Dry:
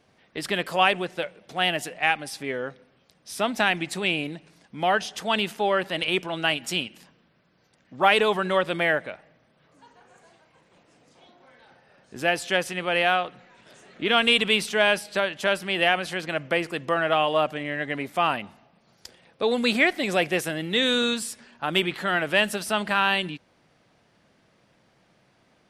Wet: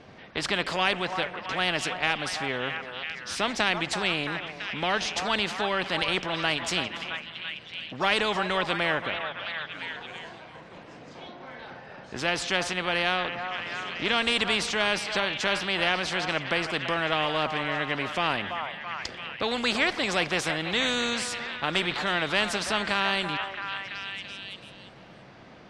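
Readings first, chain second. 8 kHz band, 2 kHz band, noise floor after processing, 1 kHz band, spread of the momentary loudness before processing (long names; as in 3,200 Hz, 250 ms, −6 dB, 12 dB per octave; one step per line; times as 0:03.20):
+0.5 dB, −1.5 dB, −48 dBFS, −3.0 dB, 11 LU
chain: high-frequency loss of the air 130 metres
echo through a band-pass that steps 334 ms, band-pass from 910 Hz, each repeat 0.7 octaves, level −9 dB
every bin compressed towards the loudest bin 2 to 1
level −3 dB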